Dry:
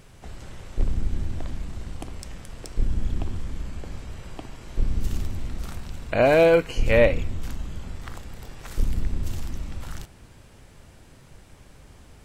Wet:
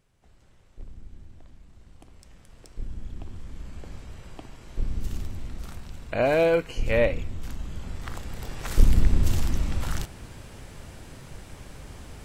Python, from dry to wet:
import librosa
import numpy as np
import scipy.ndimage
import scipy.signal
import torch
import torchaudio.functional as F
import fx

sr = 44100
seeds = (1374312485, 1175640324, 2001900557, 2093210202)

y = fx.gain(x, sr, db=fx.line((1.62, -18.5), (2.59, -11.0), (3.13, -11.0), (3.83, -4.5), (7.31, -4.5), (8.74, 6.5)))